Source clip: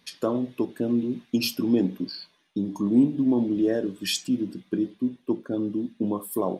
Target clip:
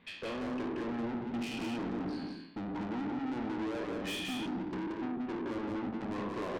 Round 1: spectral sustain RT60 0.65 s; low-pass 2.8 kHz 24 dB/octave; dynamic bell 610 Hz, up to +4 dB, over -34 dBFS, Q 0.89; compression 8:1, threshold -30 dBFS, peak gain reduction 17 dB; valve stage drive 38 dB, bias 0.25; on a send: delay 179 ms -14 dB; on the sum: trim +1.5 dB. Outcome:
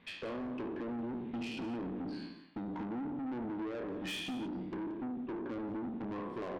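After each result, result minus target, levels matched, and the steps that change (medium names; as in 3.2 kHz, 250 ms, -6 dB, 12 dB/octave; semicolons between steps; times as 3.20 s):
echo-to-direct -10.5 dB; compression: peak gain reduction +6.5 dB
change: delay 179 ms -3.5 dB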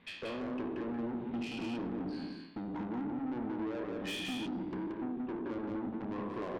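compression: peak gain reduction +6.5 dB
change: compression 8:1, threshold -22.5 dBFS, peak gain reduction 10.5 dB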